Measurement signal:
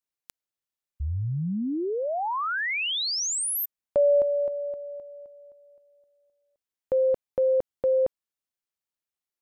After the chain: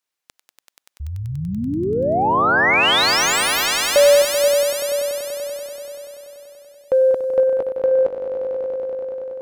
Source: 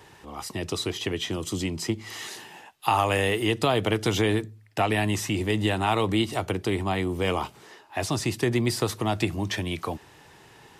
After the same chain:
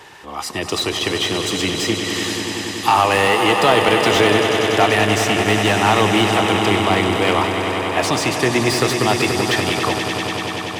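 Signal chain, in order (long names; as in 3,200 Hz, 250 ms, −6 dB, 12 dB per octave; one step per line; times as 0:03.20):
mid-hump overdrive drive 10 dB, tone 6,000 Hz, clips at −8.5 dBFS
echo that builds up and dies away 96 ms, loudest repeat 5, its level −10 dB
slew-rate limiting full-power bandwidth 310 Hz
level +6 dB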